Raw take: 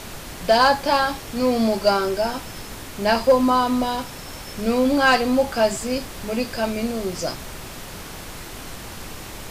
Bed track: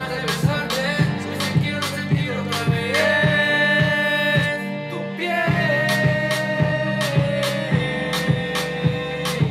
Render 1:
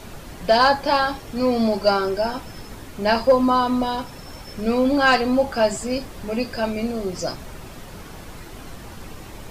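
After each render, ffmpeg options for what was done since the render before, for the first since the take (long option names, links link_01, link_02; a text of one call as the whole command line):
ffmpeg -i in.wav -af "afftdn=noise_reduction=8:noise_floor=-37" out.wav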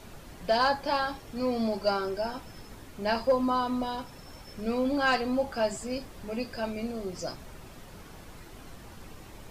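ffmpeg -i in.wav -af "volume=-9dB" out.wav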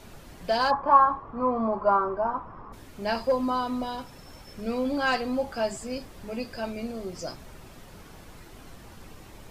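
ffmpeg -i in.wav -filter_complex "[0:a]asplit=3[link_01][link_02][link_03];[link_01]afade=type=out:start_time=0.7:duration=0.02[link_04];[link_02]lowpass=frequency=1100:width_type=q:width=8.4,afade=type=in:start_time=0.7:duration=0.02,afade=type=out:start_time=2.72:duration=0.02[link_05];[link_03]afade=type=in:start_time=2.72:duration=0.02[link_06];[link_04][link_05][link_06]amix=inputs=3:normalize=0" out.wav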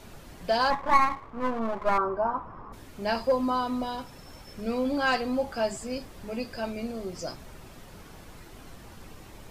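ffmpeg -i in.wav -filter_complex "[0:a]asettb=1/sr,asplit=3[link_01][link_02][link_03];[link_01]atrim=end=0.704[link_04];[link_02]atrim=start=0.7:end=1.98,asetpts=PTS-STARTPTS,afade=type=in:duration=0.004:curve=qsin,afade=type=out:start_time=1.276:duration=0.004:curve=qsin,aeval=exprs='if(lt(val(0),0),0.251*val(0),val(0))':channel_layout=same[link_05];[link_03]atrim=start=1.976[link_06];[link_04][link_05]acrossfade=duration=0.004:curve1=hsin:curve2=qsin[link_07];[link_07][link_06]acrossfade=duration=0.004:curve1=qsin:curve2=hsin" out.wav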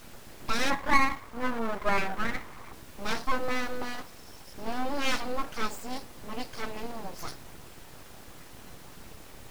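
ffmpeg -i in.wav -af "aeval=exprs='abs(val(0))':channel_layout=same,acrusher=bits=8:mix=0:aa=0.000001" out.wav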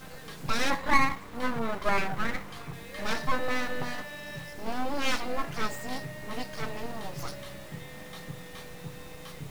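ffmpeg -i in.wav -i bed.wav -filter_complex "[1:a]volume=-22.5dB[link_01];[0:a][link_01]amix=inputs=2:normalize=0" out.wav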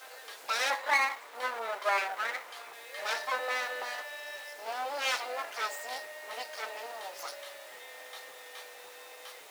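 ffmpeg -i in.wav -af "highpass=frequency=530:width=0.5412,highpass=frequency=530:width=1.3066,bandreject=frequency=1100:width=16" out.wav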